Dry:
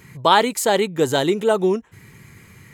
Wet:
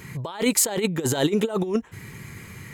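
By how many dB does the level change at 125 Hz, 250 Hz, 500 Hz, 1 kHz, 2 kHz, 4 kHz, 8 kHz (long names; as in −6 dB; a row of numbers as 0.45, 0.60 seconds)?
+1.0, −1.0, −7.0, −16.0, −7.5, −6.5, +4.5 decibels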